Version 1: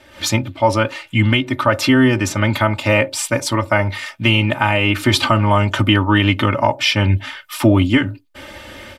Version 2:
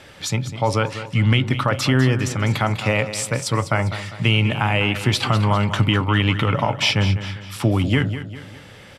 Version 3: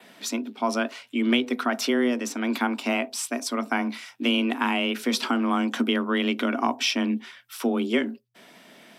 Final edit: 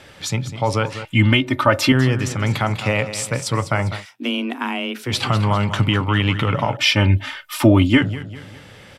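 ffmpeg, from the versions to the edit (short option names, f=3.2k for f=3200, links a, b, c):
-filter_complex "[0:a]asplit=2[a][b];[1:a]asplit=4[c][d][e][f];[c]atrim=end=1.052[g];[a]atrim=start=1.048:end=1.922[h];[d]atrim=start=1.918:end=4.06[i];[2:a]atrim=start=3.96:end=5.15[j];[e]atrim=start=5.05:end=6.772[k];[b]atrim=start=6.768:end=8.022[l];[f]atrim=start=8.018[m];[g][h]acrossfade=d=0.004:c1=hsin:c2=hsin[n];[n][i]acrossfade=d=0.004:c1=hsin:c2=hsin[o];[o][j]acrossfade=d=0.1:c1=tri:c2=tri[p];[p][k]acrossfade=d=0.1:c1=tri:c2=tri[q];[q][l]acrossfade=d=0.004:c1=hsin:c2=hsin[r];[r][m]acrossfade=d=0.004:c1=hsin:c2=hsin"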